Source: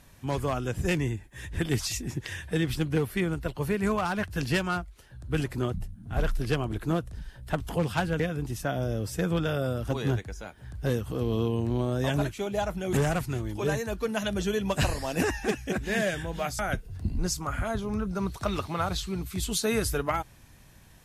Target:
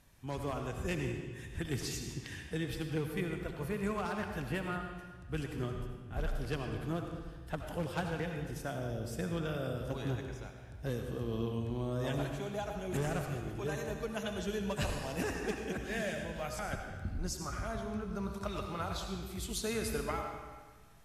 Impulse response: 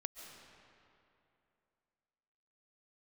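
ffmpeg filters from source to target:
-filter_complex "[0:a]asettb=1/sr,asplit=3[a][b][c];[a]atrim=end=4.404[d];[b]atrim=start=4.4:end=4.81,asetpts=PTS-STARTPTS,afade=t=in:d=0.004:c=qsin,afade=t=out:st=0.406:d=0.004:c=qsin,equalizer=f=5.4k:t=o:w=1:g=-14[e];[c]atrim=start=4.806[f];[d][e]acrossfade=d=0.004:c1=hsin:c2=qsin[g];[g][f]acrossfade=d=0.004:c1=qsin:c2=hsin[h];[1:a]atrim=start_sample=2205,asetrate=83790,aresample=44100[i];[h][i]afir=irnorm=-1:irlink=0"

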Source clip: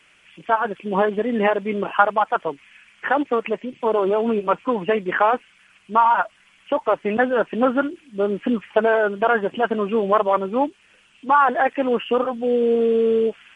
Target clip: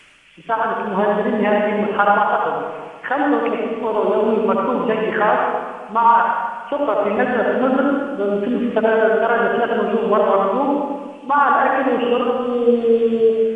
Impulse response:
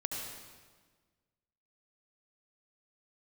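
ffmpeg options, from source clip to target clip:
-filter_complex "[0:a]lowshelf=f=64:g=7.5[a];[1:a]atrim=start_sample=2205[b];[a][b]afir=irnorm=-1:irlink=0,areverse,acompressor=mode=upward:threshold=-30dB:ratio=2.5,areverse"

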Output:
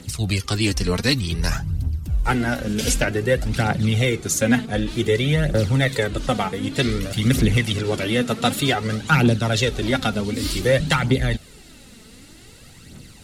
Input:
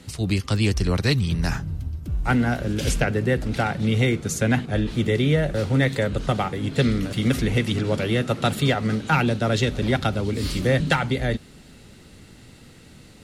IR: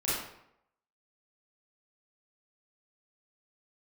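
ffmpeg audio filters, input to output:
-af "highshelf=f=3.9k:g=7,aphaser=in_gain=1:out_gain=1:delay=4.7:decay=0.52:speed=0.54:type=triangular"

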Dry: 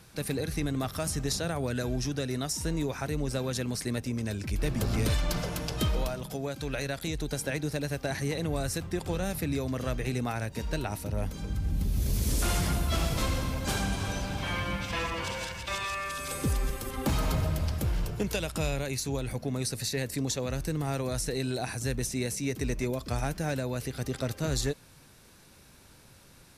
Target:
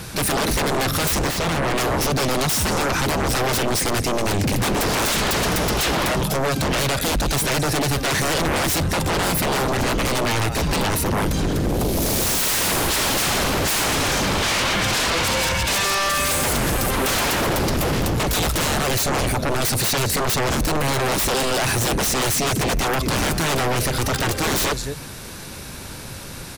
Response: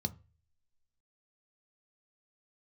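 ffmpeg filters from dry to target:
-filter_complex "[0:a]aecho=1:1:209:0.112,aeval=exprs='0.133*sin(PI/2*7.08*val(0)/0.133)':c=same,asettb=1/sr,asplit=3[a][b][c];[a]atrim=end=1.274[d];[b]atrim=start=1.27:end=1.78,asetpts=PTS-STARTPTS,afade=t=in:d=0.004:c=qsin,afade=t=out:st=0.506:d=0.004:c=qsin,highshelf=f=4.9k:g=-8.5[e];[c]atrim=start=1.776[f];[d][e]acrossfade=d=0.004:c1=hsin:c2=qsin[g];[g][f]acrossfade=d=0.004:c1=qsin:c2=hsin"

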